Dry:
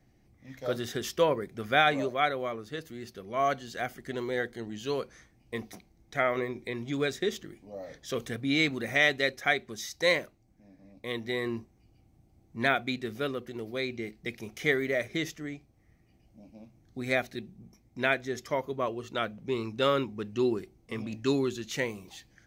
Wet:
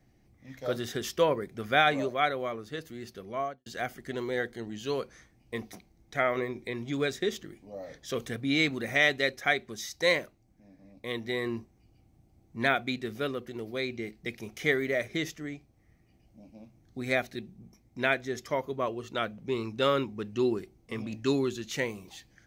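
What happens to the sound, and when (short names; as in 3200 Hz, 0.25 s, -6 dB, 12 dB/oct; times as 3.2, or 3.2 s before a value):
3.24–3.66 studio fade out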